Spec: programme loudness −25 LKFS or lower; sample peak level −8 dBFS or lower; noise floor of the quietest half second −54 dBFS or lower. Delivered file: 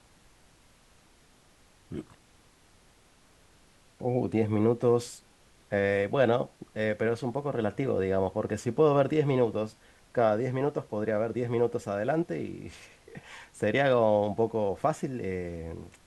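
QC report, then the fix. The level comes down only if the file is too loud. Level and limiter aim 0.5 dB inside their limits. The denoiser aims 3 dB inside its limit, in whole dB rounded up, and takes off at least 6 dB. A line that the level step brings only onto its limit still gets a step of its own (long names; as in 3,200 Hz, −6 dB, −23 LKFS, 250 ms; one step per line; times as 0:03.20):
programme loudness −28.5 LKFS: in spec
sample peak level −11.0 dBFS: in spec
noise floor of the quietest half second −60 dBFS: in spec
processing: no processing needed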